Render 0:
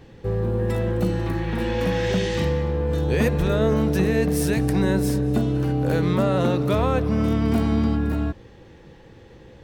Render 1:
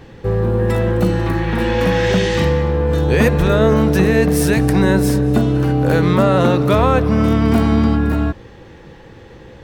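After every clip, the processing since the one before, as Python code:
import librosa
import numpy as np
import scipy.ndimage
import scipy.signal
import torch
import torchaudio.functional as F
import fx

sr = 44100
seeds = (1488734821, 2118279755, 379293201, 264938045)

y = fx.peak_eq(x, sr, hz=1300.0, db=3.5, octaves=1.6)
y = y * 10.0 ** (6.5 / 20.0)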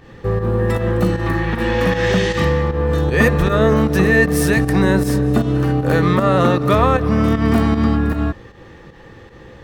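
y = fx.small_body(x, sr, hz=(1200.0, 1800.0), ring_ms=65, db=12)
y = fx.volume_shaper(y, sr, bpm=155, per_beat=1, depth_db=-9, release_ms=123.0, shape='fast start')
y = y * 10.0 ** (-1.0 / 20.0)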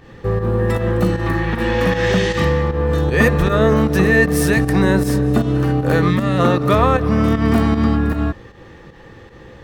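y = fx.spec_box(x, sr, start_s=6.1, length_s=0.29, low_hz=310.0, high_hz=1600.0, gain_db=-8)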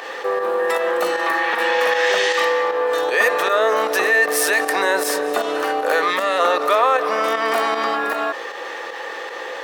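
y = scipy.signal.sosfilt(scipy.signal.butter(4, 520.0, 'highpass', fs=sr, output='sos'), x)
y = fx.env_flatten(y, sr, amount_pct=50)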